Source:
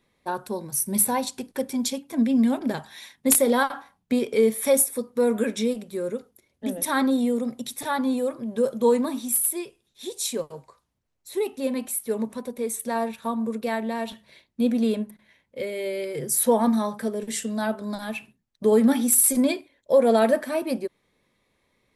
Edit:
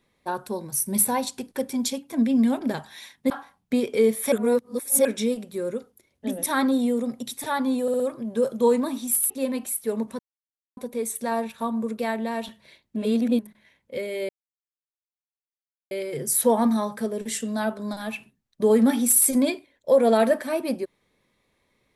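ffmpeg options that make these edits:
-filter_complex "[0:a]asplit=12[a][b][c][d][e][f][g][h][i][j][k][l];[a]atrim=end=3.302[m];[b]atrim=start=3.688:end=4.712[n];[c]atrim=start=4.708:end=5.442,asetpts=PTS-STARTPTS,areverse[o];[d]atrim=start=5.438:end=8.272[p];[e]atrim=start=8.208:end=8.272[q];[f]atrim=start=8.208:end=8.272[r];[g]atrim=start=8.208:end=9.512[s];[h]atrim=start=11.518:end=12.41,asetpts=PTS-STARTPTS,afade=t=out:st=0.888:d=0.004:c=hsin,apad=pad_dur=0.58[t];[i]atrim=start=12.41:end=14.602,asetpts=PTS-STARTPTS,afade=t=in:d=0.004:c=hsin[u];[j]atrim=start=14.598:end=15.032,asetpts=PTS-STARTPTS,areverse[v];[k]atrim=start=15.028:end=15.93,asetpts=PTS-STARTPTS,afade=t=out:st=0.898:d=0.004:c=hsin,apad=pad_dur=1.62[w];[l]atrim=start=15.93,asetpts=PTS-STARTPTS,afade=t=in:d=0.004:c=hsin[x];[m][n]acrossfade=d=0.004:c1=hsin:c2=hsin[y];[y][o]acrossfade=d=0.004:c1=hsin:c2=hsin[z];[z][p]acrossfade=d=0.004:c1=hsin:c2=hsin[aa];[aa][q]acrossfade=d=0.004:c1=hsin:c2=hsin[ab];[ab][r]acrossfade=d=0.004:c1=hsin:c2=hsin[ac];[ac][s]acrossfade=d=0.004:c1=hsin:c2=hsin[ad];[t][u]concat=n=2:v=0:a=1[ae];[ad][ae]acrossfade=d=0.004:c1=hsin:c2=hsin[af];[af][v]acrossfade=d=0.004:c1=hsin:c2=hsin[ag];[w][x]concat=n=2:v=0:a=1[ah];[ag][ah]acrossfade=d=0.004:c1=hsin:c2=hsin"

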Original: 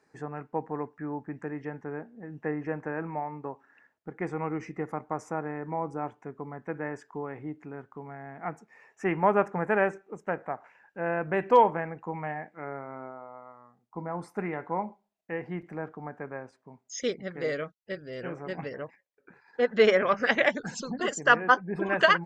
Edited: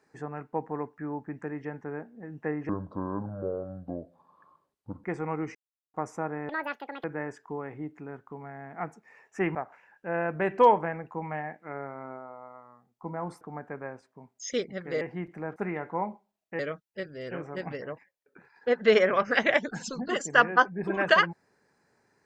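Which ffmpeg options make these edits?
-filter_complex "[0:a]asplit=12[a][b][c][d][e][f][g][h][i][j][k][l];[a]atrim=end=2.694[m];[b]atrim=start=2.69:end=4.17,asetpts=PTS-STARTPTS,asetrate=27783,aresample=44100[n];[c]atrim=start=4.166:end=4.68,asetpts=PTS-STARTPTS,afade=t=out:st=0.51:d=0.004:c=hsin[o];[d]atrim=start=4.68:end=5.07,asetpts=PTS-STARTPTS,volume=0[p];[e]atrim=start=5.07:end=5.624,asetpts=PTS-STARTPTS,afade=t=in:d=0.004:c=hsin[q];[f]atrim=start=5.62:end=6.69,asetpts=PTS-STARTPTS,asetrate=85554,aresample=44100,atrim=end_sample=24323,asetpts=PTS-STARTPTS[r];[g]atrim=start=6.686:end=9.202[s];[h]atrim=start=10.468:end=14.332[t];[i]atrim=start=15.908:end=17.512[u];[j]atrim=start=15.358:end=15.912[v];[k]atrim=start=14.328:end=15.362[w];[l]atrim=start=17.508[x];[m][n]acrossfade=d=0.004:c1=hsin:c2=hsin[y];[o][p][q]concat=n=3:v=0:a=1[z];[y][z]acrossfade=d=0.004:c1=hsin:c2=hsin[aa];[aa][r]acrossfade=d=0.004:c1=hsin:c2=hsin[ab];[ab][s]acrossfade=d=0.004:c1=hsin:c2=hsin[ac];[ac][t]acrossfade=d=0.004:c1=hsin:c2=hsin[ad];[ad][u]acrossfade=d=0.004:c1=hsin:c2=hsin[ae];[ae][v]acrossfade=d=0.004:c1=hsin:c2=hsin[af];[af][w]acrossfade=d=0.004:c1=hsin:c2=hsin[ag];[ag][x]acrossfade=d=0.004:c1=hsin:c2=hsin"

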